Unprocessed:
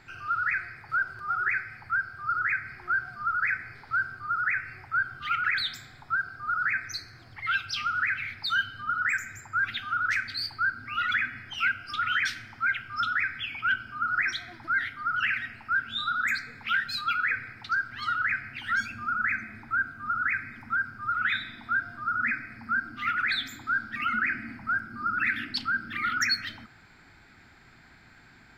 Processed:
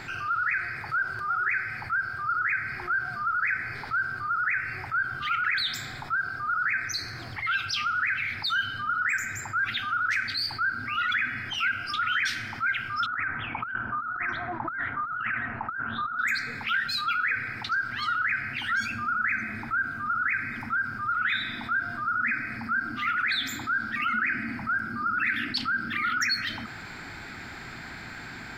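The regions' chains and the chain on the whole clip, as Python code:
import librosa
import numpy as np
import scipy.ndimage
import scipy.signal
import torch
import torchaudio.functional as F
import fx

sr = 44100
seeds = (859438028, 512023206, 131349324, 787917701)

y = fx.chain(x, sr, fx.lowpass_res(hz=990.0, q=3.0),
    fx.over_compress(threshold_db=-34.0, ratio=-0.5),
    fx.doppler_dist(depth_ms=0.12), at=(13.06, 16.19))
y = fx.low_shelf(y, sr, hz=90.0, db=-6.0)
y = fx.env_flatten(y, sr, amount_pct=50)
y = F.gain(torch.from_numpy(y), -1.5).numpy()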